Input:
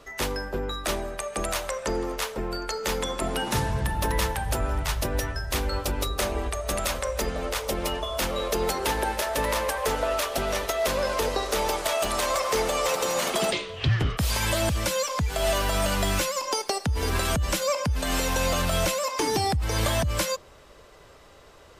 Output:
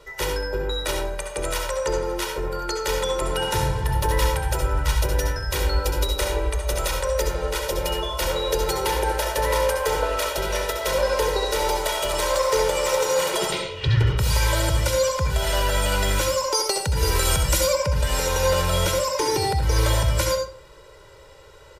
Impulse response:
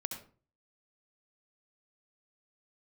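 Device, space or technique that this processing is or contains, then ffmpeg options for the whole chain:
microphone above a desk: -filter_complex "[0:a]asettb=1/sr,asplit=3[s0][s1][s2];[s0]atrim=end=16.544[s3];[s1]atrim=start=16.54:end=17.67,asetpts=PTS-STARTPTS,afade=t=in:d=0.004:c=qsin,afade=t=out:st=1.126:d=0.004:c=qsin,highshelf=f=5000:g=8[s4];[s2]atrim=start=17.666[s5];[s3][s4]acrossfade=d=0.004:c1=hsin:c2=qsin[s6];[s6][s5]acrossfade=d=0.004:c1=qsin:c2=hsin,aecho=1:1:2.1:0.85[s7];[1:a]atrim=start_sample=2205[s8];[s7][s8]afir=irnorm=-1:irlink=0"

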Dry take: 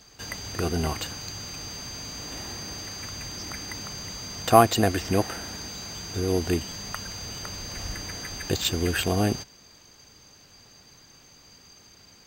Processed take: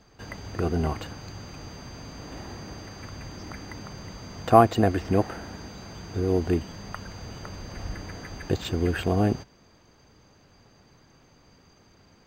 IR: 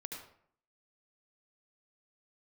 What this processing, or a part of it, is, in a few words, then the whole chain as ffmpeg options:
through cloth: -af "highshelf=f=2800:g=-17.5,volume=1.19"

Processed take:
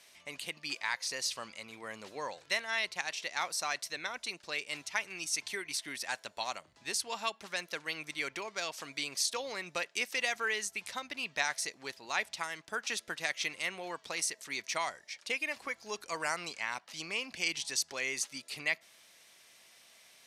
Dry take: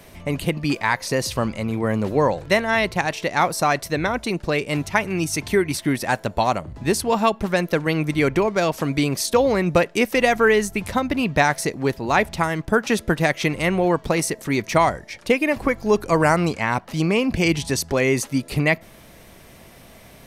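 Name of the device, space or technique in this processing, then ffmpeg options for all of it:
piezo pickup straight into a mixer: -af "lowpass=5700,aderivative"

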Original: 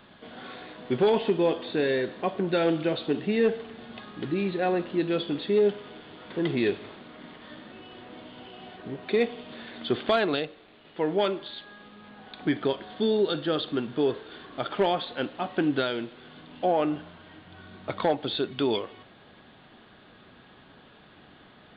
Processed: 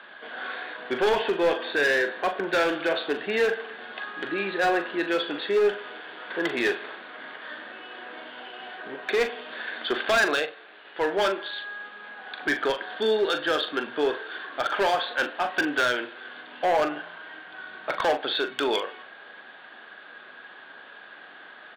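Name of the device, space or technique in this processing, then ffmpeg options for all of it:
megaphone: -filter_complex "[0:a]highpass=530,lowpass=4000,equalizer=f=1600:t=o:w=0.28:g=11,asoftclip=type=hard:threshold=0.0596,asplit=2[s0][s1];[s1]adelay=41,volume=0.335[s2];[s0][s2]amix=inputs=2:normalize=0,volume=2"

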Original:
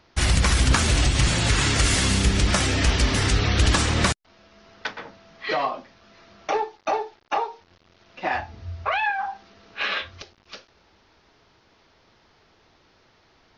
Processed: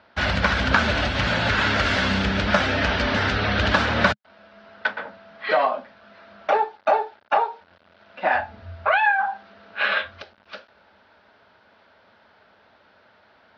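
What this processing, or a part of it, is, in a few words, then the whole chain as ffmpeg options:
guitar cabinet: -af "highpass=94,equalizer=f=140:t=q:w=4:g=-10,equalizer=f=210:t=q:w=4:g=5,equalizer=f=340:t=q:w=4:g=-6,equalizer=f=600:t=q:w=4:g=9,equalizer=f=880:t=q:w=4:g=4,equalizer=f=1500:t=q:w=4:g=10,lowpass=f=4200:w=0.5412,lowpass=f=4200:w=1.3066"

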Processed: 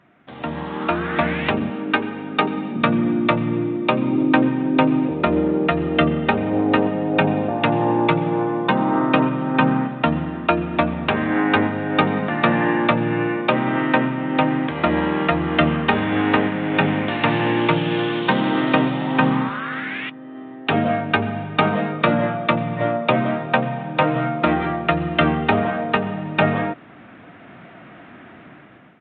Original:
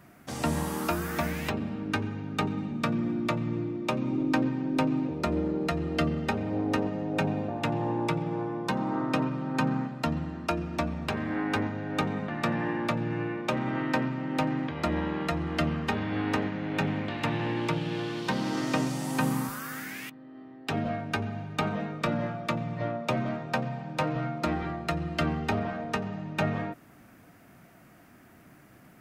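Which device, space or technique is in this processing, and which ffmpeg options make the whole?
Bluetooth headset: -filter_complex "[0:a]asettb=1/sr,asplit=3[s0][s1][s2];[s0]atrim=end=1.704[s3];[s1]atrim=start=1.7:end=2.76,asetpts=PTS-STARTPTS,afade=t=in:d=0.004:c=qsin,afade=t=out:st=1.056:d=0.004:c=qsin,highpass=240[s4];[s2]atrim=start=2.756[s5];[s3][s4]acrossfade=d=0.004:c1=hsin:c2=qsin[s6];[s6][s5]acrossfade=d=0.004:c1=qsin:c2=hsin,highpass=f=200:p=1,dynaudnorm=f=340:g=5:m=5.62,aresample=8000,aresample=44100" -ar 16000 -c:a sbc -b:a 64k

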